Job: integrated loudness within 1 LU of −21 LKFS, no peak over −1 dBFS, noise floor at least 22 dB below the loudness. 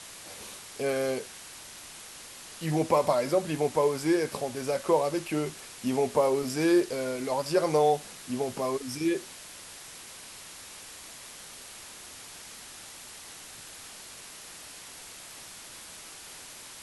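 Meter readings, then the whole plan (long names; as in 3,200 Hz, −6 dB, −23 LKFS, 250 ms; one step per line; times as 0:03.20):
background noise floor −46 dBFS; target noise floor −50 dBFS; integrated loudness −28.0 LKFS; sample peak −11.0 dBFS; target loudness −21.0 LKFS
→ broadband denoise 6 dB, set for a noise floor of −46 dBFS
level +7 dB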